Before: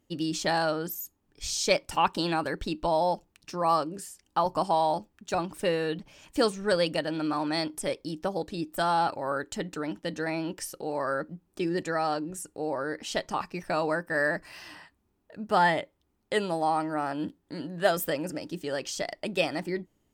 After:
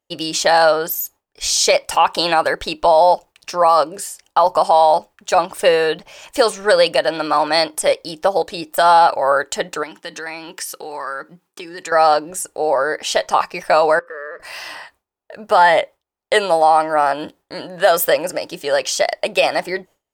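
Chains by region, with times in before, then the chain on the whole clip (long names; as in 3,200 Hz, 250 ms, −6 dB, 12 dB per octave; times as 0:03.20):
0:09.83–0:11.92: high-pass filter 170 Hz + parametric band 610 Hz −13 dB 0.63 octaves + downward compressor 5 to 1, threshold −37 dBFS
0:13.99–0:14.40: mu-law and A-law mismatch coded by mu + pair of resonant band-passes 760 Hz, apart 1.4 octaves + downward compressor 2.5 to 1, threshold −44 dBFS
whole clip: noise gate with hold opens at −50 dBFS; low shelf with overshoot 390 Hz −12 dB, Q 1.5; boost into a limiter +16.5 dB; level −2.5 dB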